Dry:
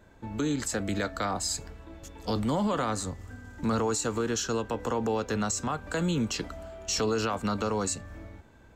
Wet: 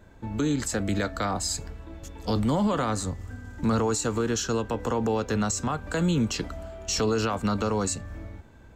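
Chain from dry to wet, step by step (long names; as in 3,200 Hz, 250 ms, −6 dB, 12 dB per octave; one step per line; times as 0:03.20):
low-shelf EQ 200 Hz +5 dB
level +1.5 dB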